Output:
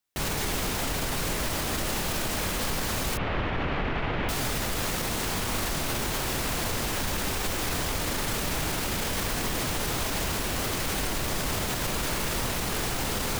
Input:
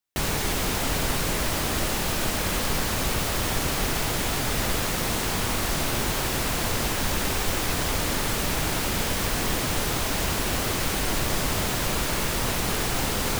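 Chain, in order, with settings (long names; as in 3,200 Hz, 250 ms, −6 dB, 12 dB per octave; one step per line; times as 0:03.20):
0:03.17–0:04.29: low-pass filter 2,800 Hz 24 dB per octave
brickwall limiter −22 dBFS, peak gain reduction 9.5 dB
level +2.5 dB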